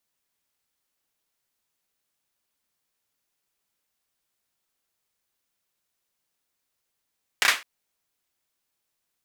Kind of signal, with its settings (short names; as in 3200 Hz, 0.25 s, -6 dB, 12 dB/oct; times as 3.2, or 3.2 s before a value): hand clap length 0.21 s, bursts 3, apart 30 ms, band 1900 Hz, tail 0.26 s